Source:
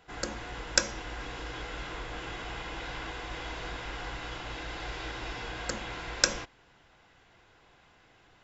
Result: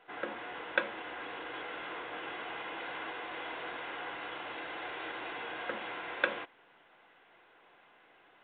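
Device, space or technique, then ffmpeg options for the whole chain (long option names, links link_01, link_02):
telephone: -af "highpass=330,lowpass=3300" -ar 8000 -c:a pcm_mulaw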